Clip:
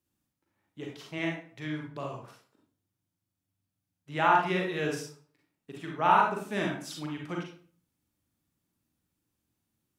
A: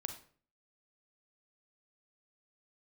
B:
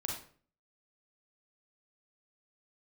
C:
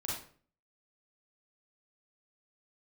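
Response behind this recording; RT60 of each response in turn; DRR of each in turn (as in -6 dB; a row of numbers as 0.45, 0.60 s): B; 0.45, 0.45, 0.45 s; 6.0, -1.0, -5.5 dB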